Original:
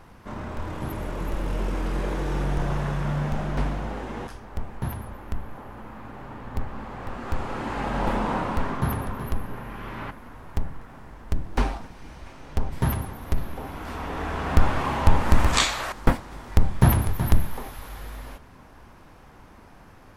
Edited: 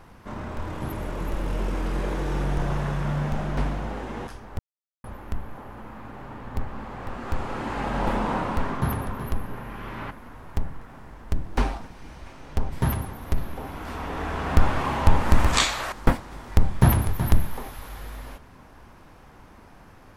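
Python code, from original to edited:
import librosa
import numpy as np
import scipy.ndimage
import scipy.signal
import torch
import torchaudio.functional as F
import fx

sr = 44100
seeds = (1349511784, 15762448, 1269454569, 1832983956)

y = fx.edit(x, sr, fx.silence(start_s=4.59, length_s=0.45), tone=tone)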